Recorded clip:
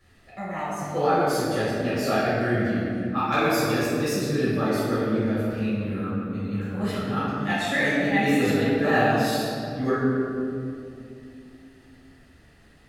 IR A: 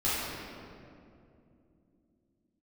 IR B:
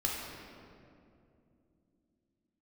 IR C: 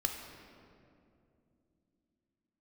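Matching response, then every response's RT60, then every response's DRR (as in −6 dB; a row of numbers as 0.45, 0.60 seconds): A; 2.7, 2.7, 2.7 seconds; −12.0, −3.5, 3.0 decibels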